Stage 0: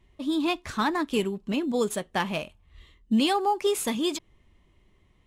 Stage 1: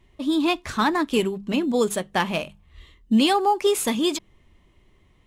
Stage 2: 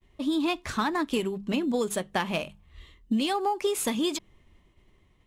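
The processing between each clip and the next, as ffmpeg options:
-af "bandreject=f=50:t=h:w=6,bandreject=f=100:t=h:w=6,bandreject=f=150:t=h:w=6,bandreject=f=200:t=h:w=6,volume=4.5dB"
-af "aeval=exprs='0.398*(cos(1*acos(clip(val(0)/0.398,-1,1)))-cos(1*PI/2))+0.0251*(cos(3*acos(clip(val(0)/0.398,-1,1)))-cos(3*PI/2))':c=same,acompressor=threshold=-23dB:ratio=6,agate=range=-33dB:threshold=-56dB:ratio=3:detection=peak"

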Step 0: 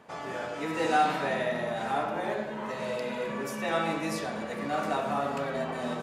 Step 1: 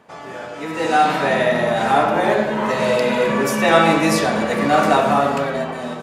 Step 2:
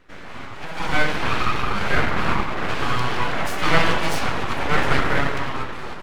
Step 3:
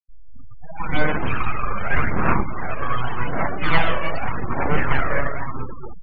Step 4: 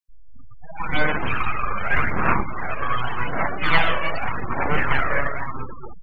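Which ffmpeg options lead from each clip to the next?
-af "dynaudnorm=f=240:g=9:m=13dB,volume=3dB"
-af "highpass=f=360:p=1,aeval=exprs='abs(val(0))':c=same,highshelf=f=4.5k:g=-10.5,volume=1dB"
-af "afftdn=nr=23:nf=-28,afftfilt=real='re*gte(hypot(re,im),0.0398)':imag='im*gte(hypot(re,im),0.0398)':win_size=1024:overlap=0.75,aphaser=in_gain=1:out_gain=1:delay=1.8:decay=0.52:speed=0.86:type=sinusoidal,volume=-2.5dB"
-af "tiltshelf=f=860:g=-3.5"

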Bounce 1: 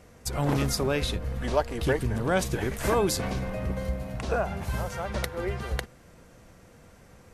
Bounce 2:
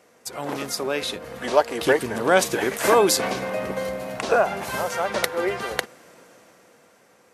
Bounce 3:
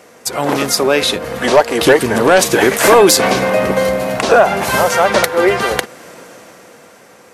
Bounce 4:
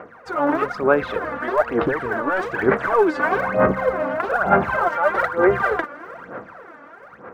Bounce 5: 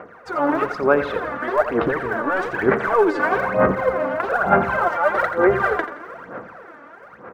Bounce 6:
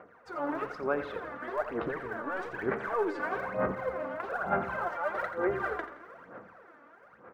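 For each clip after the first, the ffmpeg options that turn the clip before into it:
-af "highpass=330,dynaudnorm=f=230:g=11:m=11.5dB"
-filter_complex "[0:a]asplit=2[a][b];[b]alimiter=limit=-13.5dB:level=0:latency=1:release=253,volume=1.5dB[c];[a][c]amix=inputs=2:normalize=0,aeval=exprs='1.06*sin(PI/2*1.78*val(0)/1.06)':c=same,volume=-2dB"
-af "areverse,acompressor=threshold=-17dB:ratio=6,areverse,lowpass=f=1.4k:t=q:w=2.6,aphaser=in_gain=1:out_gain=1:delay=3.5:decay=0.73:speed=1.1:type=sinusoidal,volume=-6dB"
-af "aecho=1:1:86|172|258|344:0.251|0.0955|0.0363|0.0138"
-af "flanger=delay=9:depth=8.4:regen=85:speed=0.94:shape=triangular,volume=-9dB"

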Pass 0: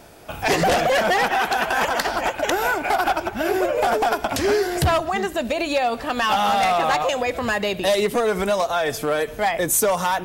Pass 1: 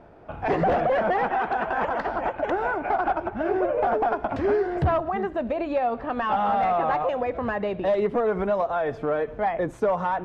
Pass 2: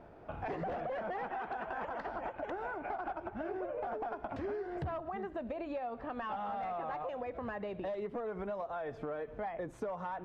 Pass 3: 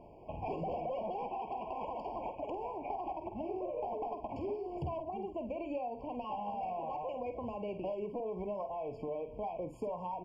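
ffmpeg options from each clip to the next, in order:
-af "lowpass=1.3k,volume=-2.5dB"
-af "acompressor=threshold=-33dB:ratio=4,volume=-5dB"
-filter_complex "[0:a]asplit=2[a][b];[b]adelay=49,volume=-9dB[c];[a][c]amix=inputs=2:normalize=0,afftfilt=real='re*eq(mod(floor(b*sr/1024/1100),2),0)':imag='im*eq(mod(floor(b*sr/1024/1100),2),0)':win_size=1024:overlap=0.75"

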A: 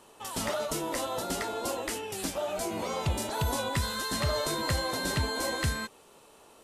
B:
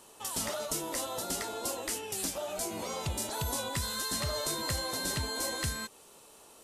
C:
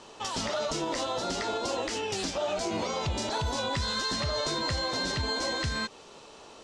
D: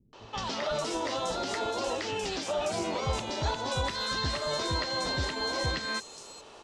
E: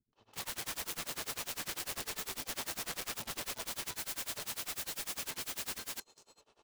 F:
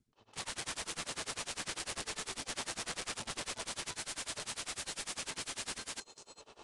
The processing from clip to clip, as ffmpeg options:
-filter_complex "[0:a]asplit=2[a][b];[b]acompressor=threshold=-37dB:ratio=6,volume=0dB[c];[a][c]amix=inputs=2:normalize=0,bass=f=250:g=0,treble=f=4k:g=8,volume=-8dB"
-af "lowpass=f=5.8k:w=0.5412,lowpass=f=5.8k:w=1.3066,alimiter=level_in=6dB:limit=-24dB:level=0:latency=1:release=89,volume=-6dB,volume=8.5dB"
-filter_complex "[0:a]acrossover=split=210|5900[a][b][c];[b]adelay=130[d];[c]adelay=540[e];[a][d][e]amix=inputs=3:normalize=0"
-af "aeval=exprs='(mod(31.6*val(0)+1,2)-1)/31.6':c=same,aeval=exprs='0.0335*(cos(1*acos(clip(val(0)/0.0335,-1,1)))-cos(1*PI/2))+0.00944*(cos(3*acos(clip(val(0)/0.0335,-1,1)))-cos(3*PI/2))':c=same,tremolo=f=10:d=0.96"
-af "areverse,acompressor=mode=upward:threshold=-46dB:ratio=2.5,areverse,aresample=22050,aresample=44100,volume=1dB"

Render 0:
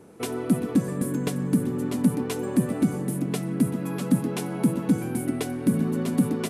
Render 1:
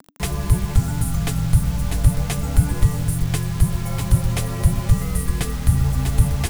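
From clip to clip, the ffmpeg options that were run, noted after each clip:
-af "acrusher=bits=6:mix=0:aa=0.000001,afreqshift=-300,volume=6.5dB"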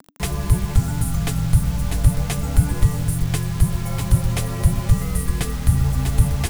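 -af anull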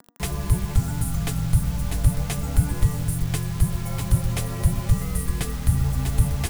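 -af "highshelf=f=12k:g=3.5,bandreject=f=238.5:t=h:w=4,bandreject=f=477:t=h:w=4,bandreject=f=715.5:t=h:w=4,bandreject=f=954:t=h:w=4,bandreject=f=1.1925k:t=h:w=4,bandreject=f=1.431k:t=h:w=4,bandreject=f=1.6695k:t=h:w=4,bandreject=f=1.908k:t=h:w=4,volume=-3.5dB"

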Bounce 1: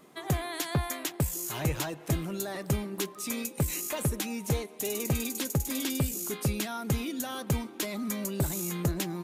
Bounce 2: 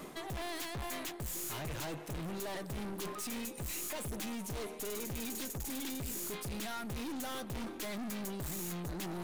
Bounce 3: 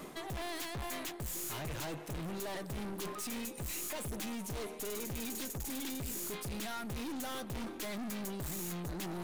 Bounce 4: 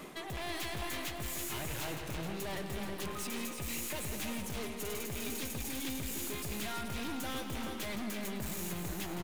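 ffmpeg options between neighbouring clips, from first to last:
-af "areverse,acompressor=threshold=-39dB:ratio=5,areverse,aeval=exprs='(tanh(355*val(0)+0.35)-tanh(0.35))/355':c=same,volume=12.5dB"
-af anull
-filter_complex "[0:a]equalizer=f=2.5k:t=o:w=1.2:g=4.5,asplit=2[a][b];[b]aecho=0:1:107|167|324|431:0.133|0.335|0.447|0.316[c];[a][c]amix=inputs=2:normalize=0,volume=-1dB"

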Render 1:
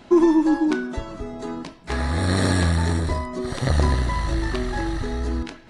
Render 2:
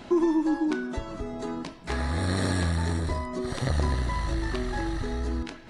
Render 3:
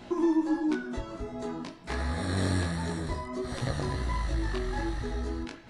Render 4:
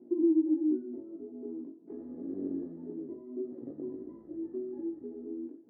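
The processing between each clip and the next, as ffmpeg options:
-af "acompressor=threshold=-42dB:ratio=1.5,volume=3dB"
-af "flanger=delay=16.5:depth=5.4:speed=1.4"
-af "asuperpass=centerf=320:order=4:qfactor=2.2"

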